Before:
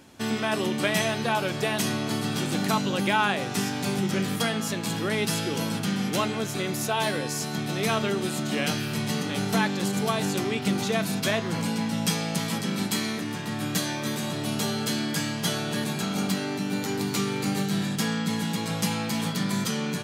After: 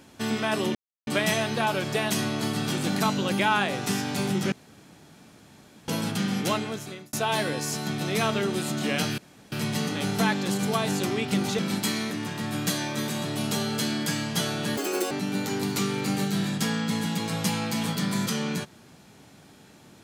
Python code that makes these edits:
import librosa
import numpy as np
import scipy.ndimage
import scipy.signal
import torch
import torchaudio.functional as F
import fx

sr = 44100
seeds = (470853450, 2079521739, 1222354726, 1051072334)

y = fx.edit(x, sr, fx.insert_silence(at_s=0.75, length_s=0.32),
    fx.room_tone_fill(start_s=4.2, length_s=1.36),
    fx.fade_out_span(start_s=6.17, length_s=0.64),
    fx.insert_room_tone(at_s=8.86, length_s=0.34),
    fx.cut(start_s=10.93, length_s=1.74),
    fx.speed_span(start_s=15.85, length_s=0.64, speed=1.88), tone=tone)